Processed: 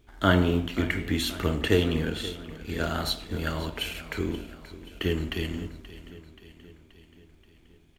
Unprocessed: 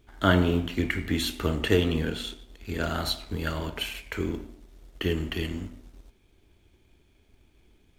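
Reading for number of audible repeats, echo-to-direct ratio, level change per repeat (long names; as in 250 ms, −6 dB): 5, −14.0 dB, −4.5 dB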